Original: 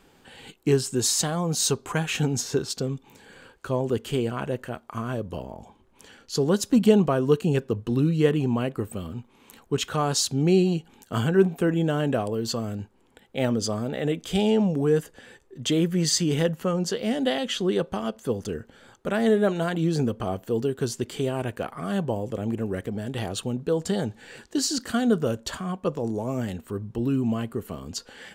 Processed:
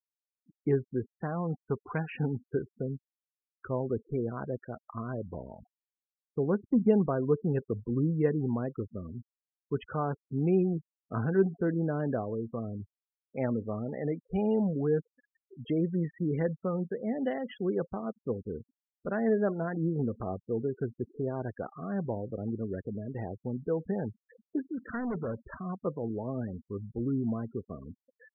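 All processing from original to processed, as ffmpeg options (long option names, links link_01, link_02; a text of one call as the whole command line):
ffmpeg -i in.wav -filter_complex "[0:a]asettb=1/sr,asplit=3[link_01][link_02][link_03];[link_01]atrim=end=24.874[link_04];[link_02]atrim=start=24.87:end=25.44,asetpts=PTS-STARTPTS,afade=type=in:duration=0.004:curve=qsin,afade=type=out:start_time=0.566:duration=0.004:curve=qsin,lowpass=frequency=1400:width_type=q:width=1.6,asoftclip=type=hard:threshold=-24.5dB[link_05];[link_03]atrim=start=25.436[link_06];[link_04][link_05]acrossfade=duration=0.004:curve1=hsin:curve2=qsin[link_07];[link_07][link_06]acrossfade=duration=0.004:curve1=qsin:curve2=hsin,lowpass=frequency=2200:width=0.5412,lowpass=frequency=2200:width=1.3066,afftfilt=real='re*gte(hypot(re,im),0.0316)':imag='im*gte(hypot(re,im),0.0316)':win_size=1024:overlap=0.75,adynamicequalizer=threshold=0.00794:dfrequency=1200:dqfactor=1.1:tfrequency=1200:tqfactor=1.1:attack=5:release=100:ratio=0.375:range=1.5:mode=cutabove:tftype=bell,volume=-6dB" out.wav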